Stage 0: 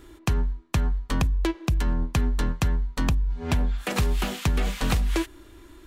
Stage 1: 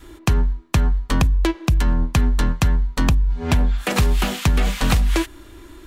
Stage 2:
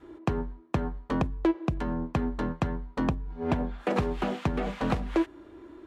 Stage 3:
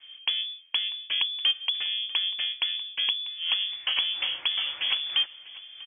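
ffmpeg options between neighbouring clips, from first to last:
ffmpeg -i in.wav -af "acontrast=70,adynamicequalizer=threshold=0.01:dfrequency=400:dqfactor=2.3:tfrequency=400:tqfactor=2.3:attack=5:release=100:ratio=0.375:range=2:mode=cutabove:tftype=bell" out.wav
ffmpeg -i in.wav -af "bandpass=frequency=450:width_type=q:width=0.75:csg=0,volume=-1.5dB" out.wav
ffmpeg -i in.wav -af "aecho=1:1:644:0.119,lowpass=frequency=3000:width_type=q:width=0.5098,lowpass=frequency=3000:width_type=q:width=0.6013,lowpass=frequency=3000:width_type=q:width=0.9,lowpass=frequency=3000:width_type=q:width=2.563,afreqshift=-3500" out.wav

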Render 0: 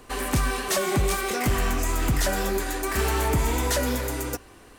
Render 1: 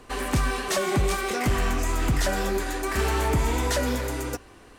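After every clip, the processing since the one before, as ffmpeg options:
ffmpeg -i in.wav -af "highshelf=frequency=11000:gain=-11" out.wav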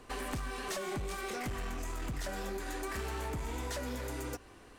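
ffmpeg -i in.wav -af "acompressor=threshold=-29dB:ratio=6,aeval=exprs='clip(val(0),-1,0.0355)':channel_layout=same,volume=-5.5dB" out.wav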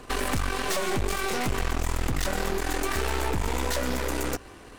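ffmpeg -i in.wav -af "aeval=exprs='0.0501*(cos(1*acos(clip(val(0)/0.0501,-1,1)))-cos(1*PI/2))+0.0112*(cos(6*acos(clip(val(0)/0.0501,-1,1)))-cos(6*PI/2))':channel_layout=same,volume=9dB" out.wav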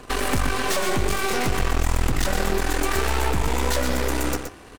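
ffmpeg -i in.wav -filter_complex "[0:a]aecho=1:1:121:0.422,asplit=2[link_01][link_02];[link_02]acrusher=bits=5:mix=0:aa=0.5,volume=-11dB[link_03];[link_01][link_03]amix=inputs=2:normalize=0,volume=1.5dB" out.wav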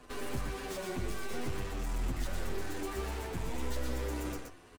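ffmpeg -i in.wav -filter_complex "[0:a]acrossover=split=450[link_01][link_02];[link_02]asoftclip=type=tanh:threshold=-28.5dB[link_03];[link_01][link_03]amix=inputs=2:normalize=0,asplit=2[link_04][link_05];[link_05]adelay=9.2,afreqshift=-0.84[link_06];[link_04][link_06]amix=inputs=2:normalize=1,volume=-9dB" out.wav

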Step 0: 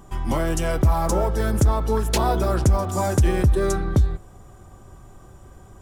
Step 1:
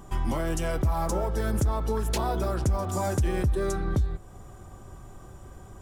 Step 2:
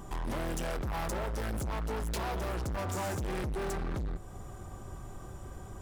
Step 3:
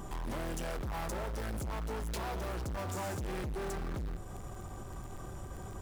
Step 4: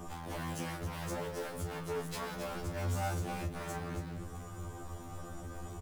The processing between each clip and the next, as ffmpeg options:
ffmpeg -i in.wav -af "alimiter=limit=-18.5dB:level=0:latency=1:release=336" out.wav
ffmpeg -i in.wav -af "volume=33.5dB,asoftclip=hard,volume=-33.5dB,volume=1dB" out.wav
ffmpeg -i in.wav -filter_complex "[0:a]asplit=2[link_01][link_02];[link_02]acrusher=bits=5:mix=0:aa=0.000001,volume=-10dB[link_03];[link_01][link_03]amix=inputs=2:normalize=0,alimiter=level_in=14.5dB:limit=-24dB:level=0:latency=1:release=13,volume=-14.5dB,volume=3dB" out.wav
ffmpeg -i in.wav -filter_complex "[0:a]asplit=2[link_01][link_02];[link_02]aecho=0:1:32.07|274.1:0.355|0.316[link_03];[link_01][link_03]amix=inputs=2:normalize=0,afftfilt=real='re*2*eq(mod(b,4),0)':imag='im*2*eq(mod(b,4),0)':win_size=2048:overlap=0.75,volume=2dB" out.wav

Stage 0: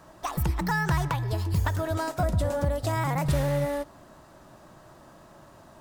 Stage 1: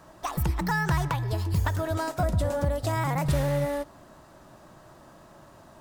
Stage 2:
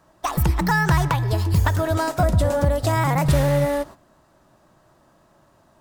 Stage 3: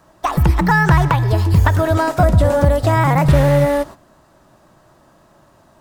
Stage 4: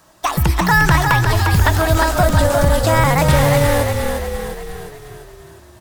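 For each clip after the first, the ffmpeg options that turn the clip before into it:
ffmpeg -i in.wav -af anull out.wav
ffmpeg -i in.wav -af "agate=range=-13dB:threshold=-43dB:ratio=16:detection=peak,volume=7dB" out.wav
ffmpeg -i in.wav -filter_complex "[0:a]acrossover=split=3100[link_01][link_02];[link_02]acompressor=threshold=-40dB:ratio=4:attack=1:release=60[link_03];[link_01][link_03]amix=inputs=2:normalize=0,volume=6dB" out.wav
ffmpeg -i in.wav -filter_complex "[0:a]highshelf=frequency=2100:gain=12,asplit=2[link_01][link_02];[link_02]asplit=7[link_03][link_04][link_05][link_06][link_07][link_08][link_09];[link_03]adelay=352,afreqshift=-36,volume=-5dB[link_10];[link_04]adelay=704,afreqshift=-72,volume=-10.4dB[link_11];[link_05]adelay=1056,afreqshift=-108,volume=-15.7dB[link_12];[link_06]adelay=1408,afreqshift=-144,volume=-21.1dB[link_13];[link_07]adelay=1760,afreqshift=-180,volume=-26.4dB[link_14];[link_08]adelay=2112,afreqshift=-216,volume=-31.8dB[link_15];[link_09]adelay=2464,afreqshift=-252,volume=-37.1dB[link_16];[link_10][link_11][link_12][link_13][link_14][link_15][link_16]amix=inputs=7:normalize=0[link_17];[link_01][link_17]amix=inputs=2:normalize=0,volume=-2.5dB" out.wav

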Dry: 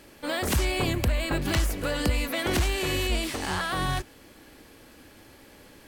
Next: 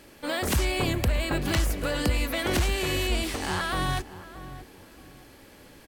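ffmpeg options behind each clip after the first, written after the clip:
ffmpeg -i in.wav -filter_complex "[0:a]asplit=2[link_01][link_02];[link_02]adelay=625,lowpass=frequency=1100:poles=1,volume=-13dB,asplit=2[link_03][link_04];[link_04]adelay=625,lowpass=frequency=1100:poles=1,volume=0.31,asplit=2[link_05][link_06];[link_06]adelay=625,lowpass=frequency=1100:poles=1,volume=0.31[link_07];[link_01][link_03][link_05][link_07]amix=inputs=4:normalize=0" out.wav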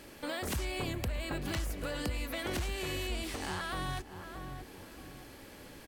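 ffmpeg -i in.wav -af "acompressor=threshold=-41dB:ratio=2" out.wav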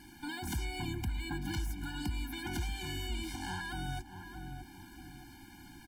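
ffmpeg -i in.wav -af "afftfilt=real='re*eq(mod(floor(b*sr/1024/350),2),0)':imag='im*eq(mod(floor(b*sr/1024/350),2),0)':win_size=1024:overlap=0.75" out.wav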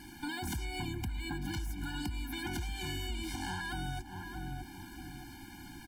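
ffmpeg -i in.wav -af "acompressor=threshold=-38dB:ratio=6,volume=4dB" out.wav

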